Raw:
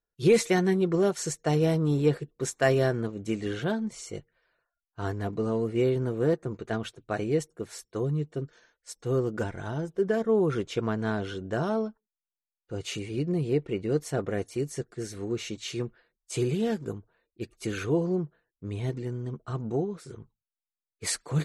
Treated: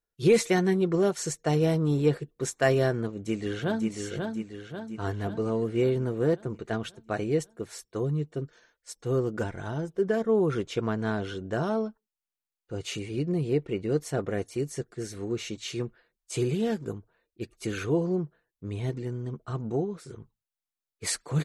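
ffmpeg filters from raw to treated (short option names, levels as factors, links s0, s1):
-filter_complex "[0:a]asplit=2[s0][s1];[s1]afade=t=in:st=3.09:d=0.01,afade=t=out:st=3.89:d=0.01,aecho=0:1:540|1080|1620|2160|2700|3240|3780:0.595662|0.327614|0.180188|0.0991033|0.0545068|0.0299787|0.0164883[s2];[s0][s2]amix=inputs=2:normalize=0"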